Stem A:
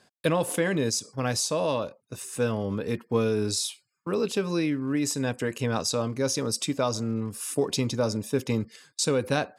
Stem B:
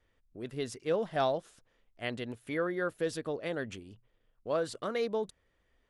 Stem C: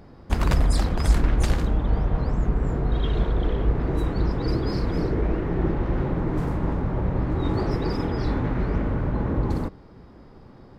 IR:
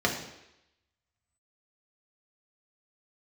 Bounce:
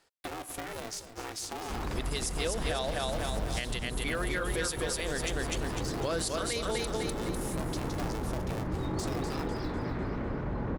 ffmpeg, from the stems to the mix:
-filter_complex "[0:a]acompressor=threshold=0.0398:ratio=6,aeval=exprs='val(0)*sgn(sin(2*PI*220*n/s))':c=same,volume=0.473,asplit=2[s0][s1];[s1]volume=0.237[s2];[1:a]crystalizer=i=9.5:c=0,adelay=1550,volume=0.891,asplit=2[s3][s4];[s4]volume=0.708[s5];[2:a]adelay=1400,volume=0.531,asplit=2[s6][s7];[s7]volume=0.355[s8];[s0][s6]amix=inputs=2:normalize=0,lowshelf=f=220:g=-7,alimiter=level_in=1.41:limit=0.0631:level=0:latency=1:release=11,volume=0.708,volume=1[s9];[s2][s5][s8]amix=inputs=3:normalize=0,aecho=0:1:250|500|750|1000|1250|1500:1|0.41|0.168|0.0689|0.0283|0.0116[s10];[s3][s9][s10]amix=inputs=3:normalize=0,alimiter=limit=0.0841:level=0:latency=1:release=145"

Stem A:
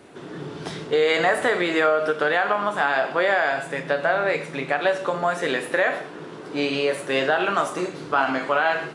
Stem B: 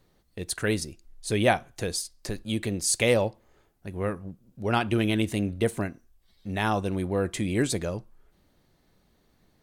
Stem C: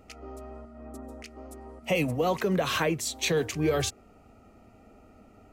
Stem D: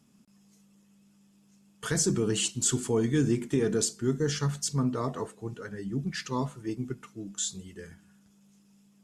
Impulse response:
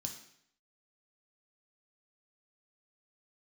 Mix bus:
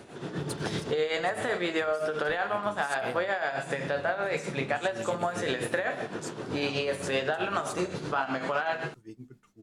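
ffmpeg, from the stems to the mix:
-filter_complex "[0:a]volume=1.06,asplit=2[s0][s1];[s1]volume=0.473[s2];[1:a]volume=0.355[s3];[3:a]adelay=2400,volume=0.282[s4];[4:a]atrim=start_sample=2205[s5];[s2][s5]afir=irnorm=-1:irlink=0[s6];[s0][s3][s4][s6]amix=inputs=4:normalize=0,tremolo=f=7.8:d=0.6,acompressor=threshold=0.0501:ratio=5"

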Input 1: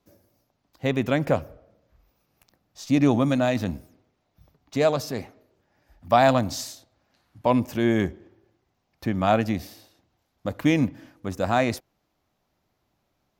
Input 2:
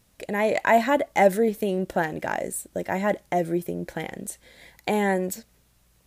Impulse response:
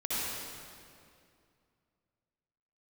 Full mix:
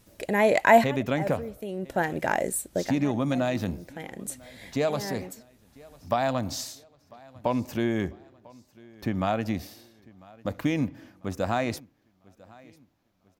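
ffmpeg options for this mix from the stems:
-filter_complex "[0:a]acompressor=threshold=0.1:ratio=6,volume=0.841,asplit=3[s0][s1][s2];[s1]volume=0.0631[s3];[1:a]volume=1.26[s4];[s2]apad=whole_len=267268[s5];[s4][s5]sidechaincompress=threshold=0.0112:ratio=12:attack=12:release=649[s6];[s3]aecho=0:1:997|1994|2991|3988|4985|5982:1|0.41|0.168|0.0689|0.0283|0.0116[s7];[s0][s6][s7]amix=inputs=3:normalize=0"

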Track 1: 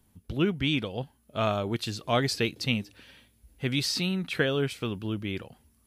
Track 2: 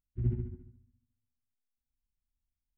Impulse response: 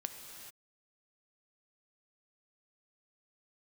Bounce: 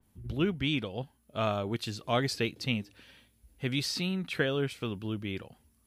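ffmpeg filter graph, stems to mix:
-filter_complex "[0:a]volume=0.708[s0];[1:a]volume=0.224[s1];[s0][s1]amix=inputs=2:normalize=0,adynamicequalizer=threshold=0.00708:dfrequency=3100:dqfactor=0.7:tfrequency=3100:tqfactor=0.7:attack=5:release=100:ratio=0.375:range=2:mode=cutabove:tftype=highshelf"

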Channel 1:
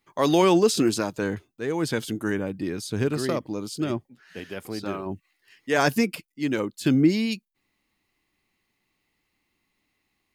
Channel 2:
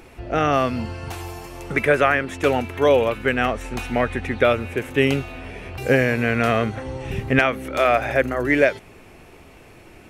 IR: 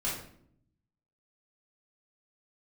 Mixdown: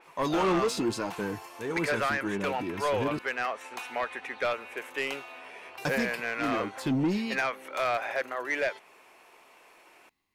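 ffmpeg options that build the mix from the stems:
-filter_complex "[0:a]flanger=delay=4.8:depth=7.2:regen=53:speed=0.84:shape=triangular,volume=0.891,asplit=3[s0][s1][s2];[s0]atrim=end=3.19,asetpts=PTS-STARTPTS,afade=t=out:st=3.186:d=0.004:c=hsin[s3];[s1]atrim=start=3.19:end=5.85,asetpts=PTS-STARTPTS,volume=0[s4];[s2]atrim=start=5.85,asetpts=PTS-STARTPTS,afade=t=in:d=0.004:c=hsin[s5];[s3][s4][s5]concat=n=3:v=0:a=1[s6];[1:a]highpass=620,volume=0.473[s7];[s6][s7]amix=inputs=2:normalize=0,equalizer=f=1000:w=4.5:g=6.5,asoftclip=type=tanh:threshold=0.0841,adynamicequalizer=threshold=0.00501:dfrequency=5000:dqfactor=0.7:tfrequency=5000:tqfactor=0.7:attack=5:release=100:ratio=0.375:range=2.5:mode=cutabove:tftype=highshelf"

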